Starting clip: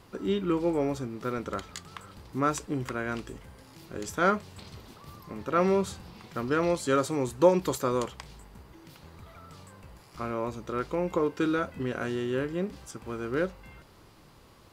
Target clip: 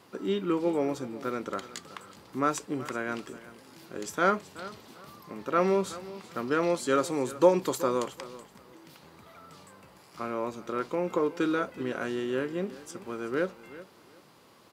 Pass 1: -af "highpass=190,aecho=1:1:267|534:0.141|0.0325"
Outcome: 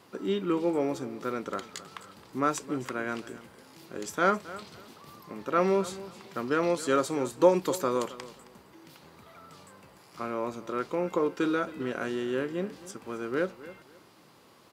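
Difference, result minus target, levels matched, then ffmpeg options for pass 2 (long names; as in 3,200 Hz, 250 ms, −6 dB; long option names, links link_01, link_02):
echo 108 ms early
-af "highpass=190,aecho=1:1:375|750:0.141|0.0325"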